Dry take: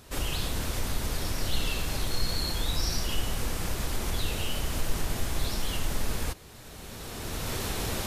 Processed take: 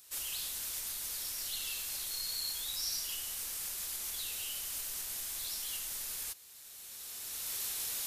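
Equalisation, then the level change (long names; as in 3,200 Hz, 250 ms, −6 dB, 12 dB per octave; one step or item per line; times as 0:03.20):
first-order pre-emphasis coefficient 0.97
0.0 dB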